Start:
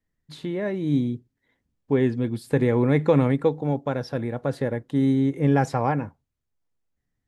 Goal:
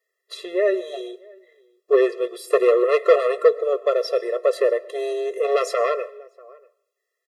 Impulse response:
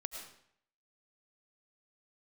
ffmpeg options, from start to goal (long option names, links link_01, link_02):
-filter_complex "[0:a]asplit=2[link_01][link_02];[link_02]adelay=641.4,volume=-27dB,highshelf=frequency=4000:gain=-14.4[link_03];[link_01][link_03]amix=inputs=2:normalize=0,aeval=exprs='0.447*sin(PI/2*2.24*val(0)/0.447)':channel_layout=same,asplit=2[link_04][link_05];[1:a]atrim=start_sample=2205,adelay=14[link_06];[link_05][link_06]afir=irnorm=-1:irlink=0,volume=-14dB[link_07];[link_04][link_07]amix=inputs=2:normalize=0,afftfilt=real='re*eq(mod(floor(b*sr/1024/350),2),1)':imag='im*eq(mod(floor(b*sr/1024/350),2),1)':win_size=1024:overlap=0.75"